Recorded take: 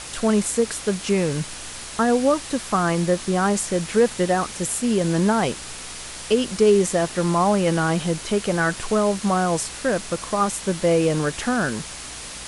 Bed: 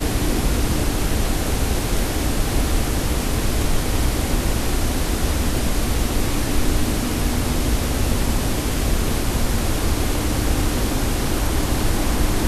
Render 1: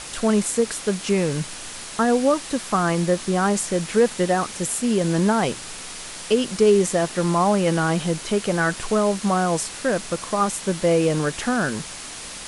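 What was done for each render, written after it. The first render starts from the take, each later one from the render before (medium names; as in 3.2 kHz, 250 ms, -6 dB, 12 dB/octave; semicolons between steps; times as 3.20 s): de-hum 60 Hz, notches 2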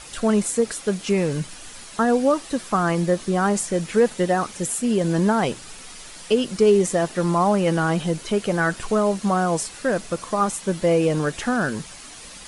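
noise reduction 8 dB, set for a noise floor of -36 dBFS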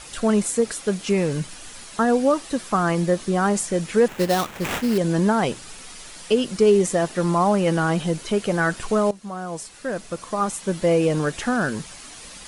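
4.08–4.98 s: sample-rate reducer 4.8 kHz, jitter 20%; 9.11–10.87 s: fade in, from -16 dB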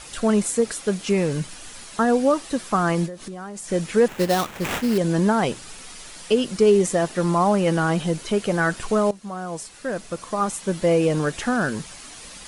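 3.06–3.69 s: compression 8:1, threshold -31 dBFS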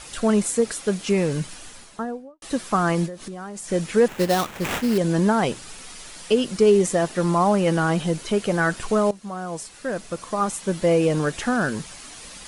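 1.52–2.42 s: studio fade out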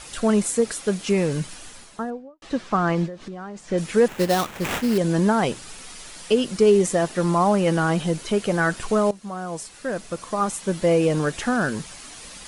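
2.10–3.78 s: distance through air 120 m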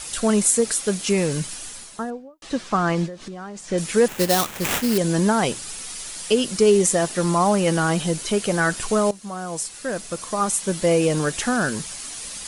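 treble shelf 4.4 kHz +11 dB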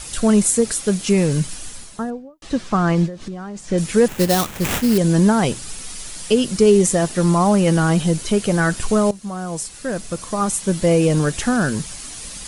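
bass shelf 220 Hz +11 dB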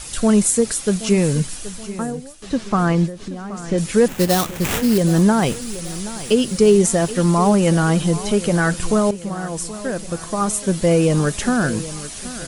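feedback delay 776 ms, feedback 49%, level -15.5 dB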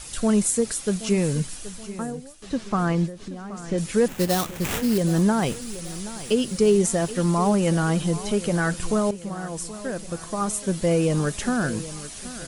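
trim -5.5 dB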